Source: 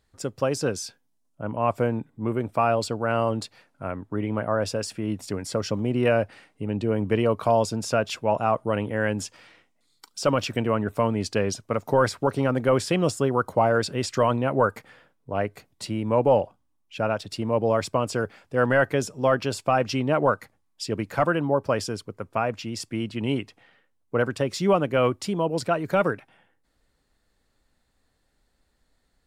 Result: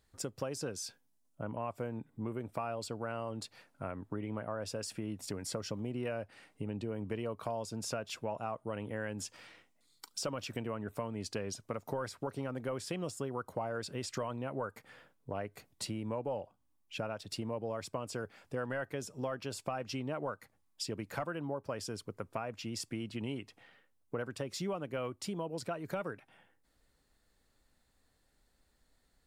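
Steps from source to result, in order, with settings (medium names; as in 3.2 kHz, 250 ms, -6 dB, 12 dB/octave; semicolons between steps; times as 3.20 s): treble shelf 7.5 kHz +5.5 dB; compression 4:1, threshold -33 dBFS, peak gain reduction 15.5 dB; trim -3.5 dB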